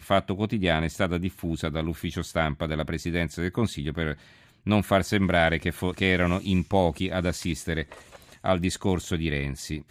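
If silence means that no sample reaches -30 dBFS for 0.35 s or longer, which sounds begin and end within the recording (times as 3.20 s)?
4.67–7.92 s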